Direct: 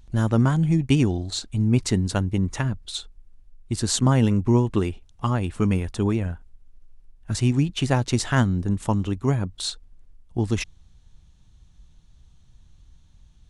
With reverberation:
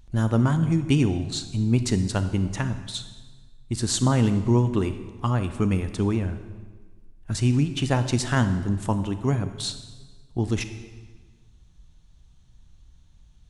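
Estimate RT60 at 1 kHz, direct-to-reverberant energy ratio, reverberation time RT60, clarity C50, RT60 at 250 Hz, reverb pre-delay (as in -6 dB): 1.4 s, 10.0 dB, 1.4 s, 11.0 dB, 1.6 s, 28 ms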